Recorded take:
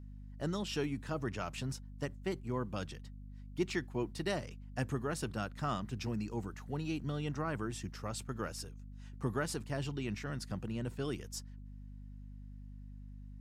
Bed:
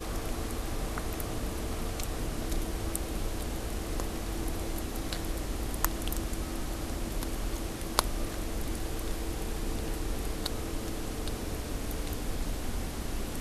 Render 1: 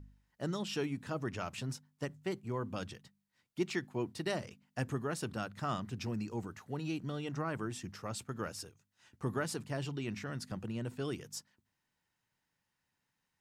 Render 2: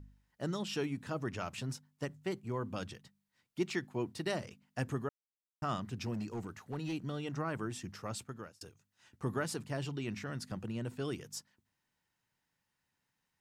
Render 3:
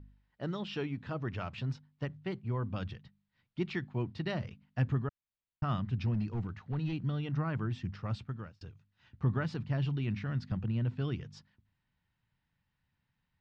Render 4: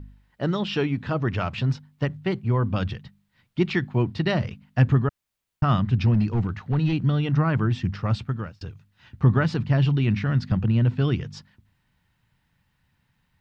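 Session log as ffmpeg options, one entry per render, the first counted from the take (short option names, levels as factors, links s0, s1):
-af "bandreject=f=50:t=h:w=4,bandreject=f=100:t=h:w=4,bandreject=f=150:t=h:w=4,bandreject=f=200:t=h:w=4,bandreject=f=250:t=h:w=4"
-filter_complex "[0:a]asettb=1/sr,asplit=3[s0][s1][s2];[s0]atrim=end=6.144[s3];[s1]atrim=start=6.14:end=6.93,asetpts=PTS-STARTPTS,afade=t=in:d=0.004:c=qsin,afade=t=out:st=0.786:d=0.004:c=qsin,asoftclip=type=hard:threshold=0.0211[s4];[s2]atrim=start=6.926[s5];[s3][s4]acrossfade=d=0.004:c1=hsin:c2=qsin[s6];[s6][s5]acrossfade=d=0.004:c1=qsin:c2=hsin,asplit=4[s7][s8][s9][s10];[s7]atrim=end=5.09,asetpts=PTS-STARTPTS,afade=t=out:st=5.086:d=0.004:c=hsin[s11];[s8]atrim=start=5.09:end=5.62,asetpts=PTS-STARTPTS,volume=0[s12];[s9]atrim=start=5.62:end=8.61,asetpts=PTS-STARTPTS,afade=t=in:d=0.004:c=hsin,afade=t=out:st=2.53:d=0.46[s13];[s10]atrim=start=8.61,asetpts=PTS-STARTPTS,afade=t=in:d=0.004:c=hsin[s14];[s11][s12][s13][s14]concat=n=4:v=0:a=1"
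-af "lowpass=f=4100:w=0.5412,lowpass=f=4100:w=1.3066,asubboost=boost=4.5:cutoff=170"
-af "volume=3.98"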